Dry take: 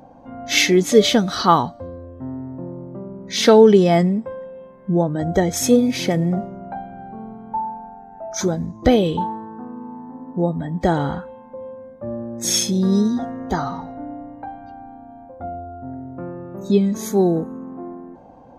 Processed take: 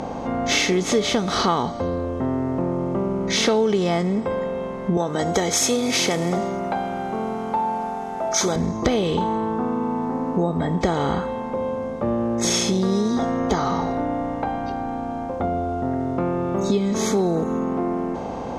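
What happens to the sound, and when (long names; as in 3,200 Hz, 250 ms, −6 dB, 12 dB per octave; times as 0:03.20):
0:04.97–0:08.56: RIAA equalisation recording
whole clip: compressor on every frequency bin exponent 0.6; low-pass filter 6,300 Hz 12 dB per octave; downward compressor 4 to 1, threshold −18 dBFS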